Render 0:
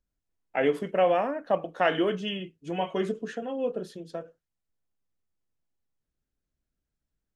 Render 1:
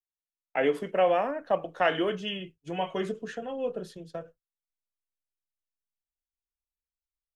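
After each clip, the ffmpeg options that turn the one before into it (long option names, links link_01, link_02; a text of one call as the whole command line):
ffmpeg -i in.wav -filter_complex "[0:a]agate=range=-33dB:threshold=-41dB:ratio=3:detection=peak,asubboost=boost=10.5:cutoff=85,acrossover=split=140|690|2600[link_01][link_02][link_03][link_04];[link_01]acompressor=threshold=-58dB:ratio=6[link_05];[link_05][link_02][link_03][link_04]amix=inputs=4:normalize=0" out.wav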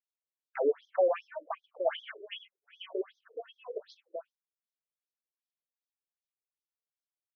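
ffmpeg -i in.wav -af "afftfilt=real='re*between(b*sr/1024,410*pow(4700/410,0.5+0.5*sin(2*PI*2.6*pts/sr))/1.41,410*pow(4700/410,0.5+0.5*sin(2*PI*2.6*pts/sr))*1.41)':imag='im*between(b*sr/1024,410*pow(4700/410,0.5+0.5*sin(2*PI*2.6*pts/sr))/1.41,410*pow(4700/410,0.5+0.5*sin(2*PI*2.6*pts/sr))*1.41)':win_size=1024:overlap=0.75,volume=-1dB" out.wav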